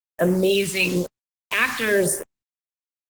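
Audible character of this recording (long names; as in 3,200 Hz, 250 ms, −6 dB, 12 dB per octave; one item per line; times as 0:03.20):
a quantiser's noise floor 6 bits, dither none
phaser sweep stages 2, 1 Hz, lowest notch 530–3,900 Hz
Opus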